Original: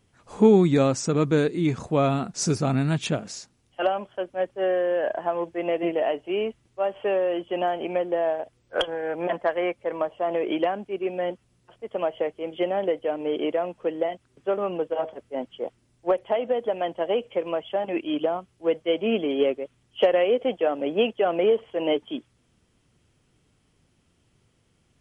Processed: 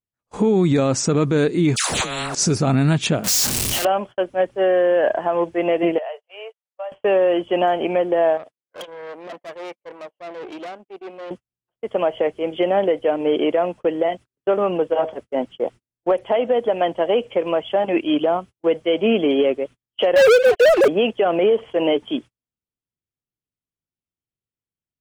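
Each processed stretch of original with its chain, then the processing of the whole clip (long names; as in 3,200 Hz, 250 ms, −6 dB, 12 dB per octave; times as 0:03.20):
0:01.76–0:02.35: all-pass dispersion lows, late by 143 ms, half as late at 910 Hz + compressor whose output falls as the input rises −33 dBFS + every bin compressed towards the loudest bin 4 to 1
0:03.24–0:03.85: sign of each sample alone + high-shelf EQ 3,400 Hz +11.5 dB
0:05.98–0:06.92: Butterworth high-pass 460 Hz 96 dB per octave + downward compressor 2.5 to 1, threshold −41 dBFS
0:08.37–0:11.31: tube saturation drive 30 dB, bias 0.75 + downward compressor 12 to 1, threshold −37 dBFS + high-pass filter 210 Hz
0:20.16–0:20.88: three sine waves on the formant tracks + leveller curve on the samples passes 5
whole clip: noise gate −41 dBFS, range −39 dB; boost into a limiter +16.5 dB; level −8.5 dB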